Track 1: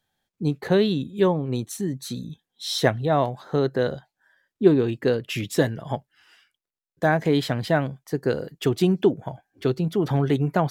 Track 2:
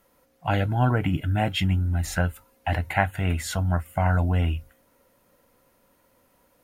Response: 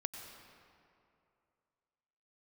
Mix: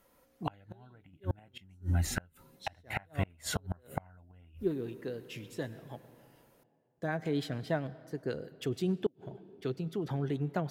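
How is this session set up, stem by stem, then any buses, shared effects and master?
−12.0 dB, 0.00 s, send −9.5 dB, rotating-speaker cabinet horn 6.7 Hz; automatic ducking −7 dB, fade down 1.55 s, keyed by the second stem
−3.5 dB, 0.00 s, no send, no processing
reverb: on, RT60 2.6 s, pre-delay 86 ms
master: gate with flip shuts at −19 dBFS, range −32 dB

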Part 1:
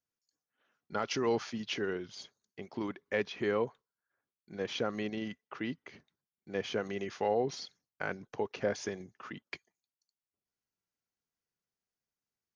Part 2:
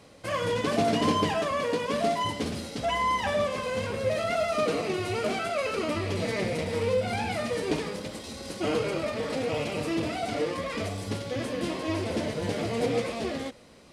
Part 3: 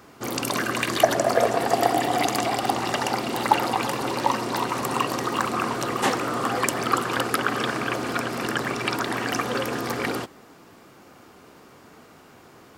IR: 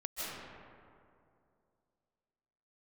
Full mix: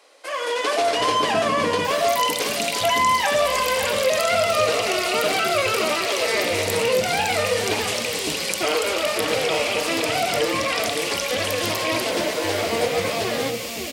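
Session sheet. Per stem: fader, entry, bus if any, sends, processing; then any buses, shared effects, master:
muted
+2.5 dB, 0.00 s, bus A, no send, echo send −16 dB, automatic gain control gain up to 13 dB
+2.0 dB, 1.85 s, bus A, no send, no echo send, Butterworth high-pass 2,200 Hz 48 dB per octave; envelope flattener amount 70%
bus A: 0.0 dB, Bessel high-pass filter 600 Hz, order 8; downward compressor 1.5 to 1, threshold −27 dBFS, peak gain reduction 6.5 dB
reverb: not used
echo: single-tap delay 561 ms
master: no processing

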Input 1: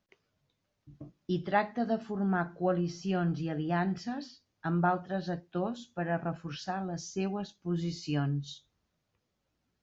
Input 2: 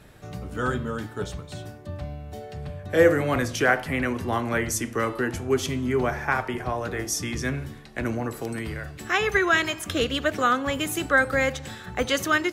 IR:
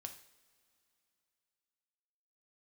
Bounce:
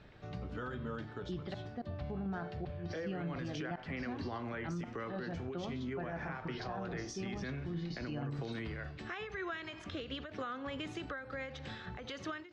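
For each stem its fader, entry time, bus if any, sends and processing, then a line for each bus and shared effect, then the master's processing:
−1.0 dB, 0.00 s, no send, gate with flip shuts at −20 dBFS, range −26 dB; shaped tremolo saw down 6.2 Hz, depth 70%
−6.5 dB, 0.00 s, no send, downward compressor 12 to 1, threshold −28 dBFS, peak gain reduction 16.5 dB; every ending faded ahead of time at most 100 dB per second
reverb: not used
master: low-pass filter 4,800 Hz 24 dB per octave; brickwall limiter −31.5 dBFS, peak gain reduction 9.5 dB

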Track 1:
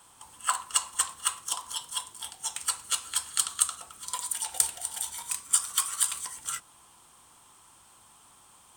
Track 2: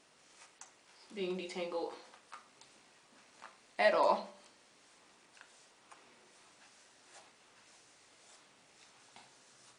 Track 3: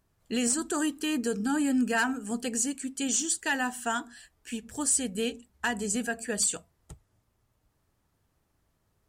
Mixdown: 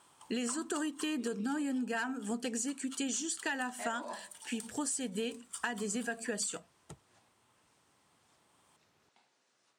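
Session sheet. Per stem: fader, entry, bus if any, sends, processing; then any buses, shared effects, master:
−4.5 dB, 0.00 s, no send, automatic ducking −11 dB, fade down 1.40 s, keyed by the third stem
−11.0 dB, 0.00 s, no send, no processing
+2.5 dB, 0.00 s, no send, no processing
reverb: not used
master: high-pass filter 170 Hz 12 dB per octave; high-shelf EQ 8,600 Hz −10 dB; downward compressor 6 to 1, threshold −33 dBFS, peak gain reduction 12 dB

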